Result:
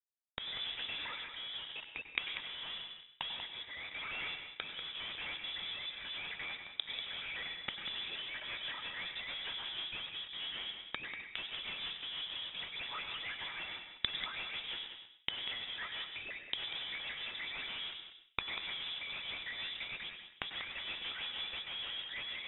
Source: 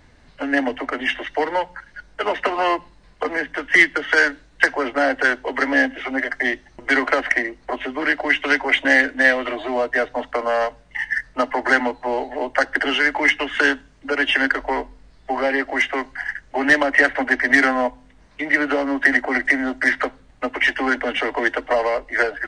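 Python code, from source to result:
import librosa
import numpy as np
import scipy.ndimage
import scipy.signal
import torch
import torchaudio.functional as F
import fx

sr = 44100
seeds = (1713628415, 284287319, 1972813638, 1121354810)

p1 = fx.pitch_ramps(x, sr, semitones=-9.0, every_ms=263)
p2 = scipy.signal.sosfilt(scipy.signal.butter(2, 56.0, 'highpass', fs=sr, output='sos'), p1)
p3 = p2 + 0.4 * np.pad(p2, (int(2.9 * sr / 1000.0), 0))[:len(p2)]
p4 = fx.leveller(p3, sr, passes=5)
p5 = fx.fuzz(p4, sr, gain_db=41.0, gate_db=-48.0)
p6 = fx.rotary_switch(p5, sr, hz=0.9, then_hz=6.3, switch_at_s=7.46)
p7 = fx.gate_flip(p6, sr, shuts_db=-20.0, range_db=-29)
p8 = p7 + fx.echo_single(p7, sr, ms=191, db=-9.5, dry=0)
p9 = fx.rev_plate(p8, sr, seeds[0], rt60_s=0.56, hf_ratio=0.65, predelay_ms=85, drr_db=7.5)
p10 = fx.freq_invert(p9, sr, carrier_hz=3700)
y = p10 * librosa.db_to_amplitude(2.5)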